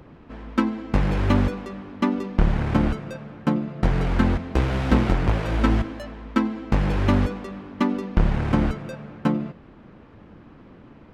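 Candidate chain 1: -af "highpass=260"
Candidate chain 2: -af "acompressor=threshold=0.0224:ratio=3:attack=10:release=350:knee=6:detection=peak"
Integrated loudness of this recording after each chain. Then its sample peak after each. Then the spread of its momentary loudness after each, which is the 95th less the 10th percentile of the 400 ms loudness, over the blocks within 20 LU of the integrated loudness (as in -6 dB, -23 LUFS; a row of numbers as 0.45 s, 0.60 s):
-28.5 LUFS, -35.5 LUFS; -6.5 dBFS, -13.0 dBFS; 11 LU, 14 LU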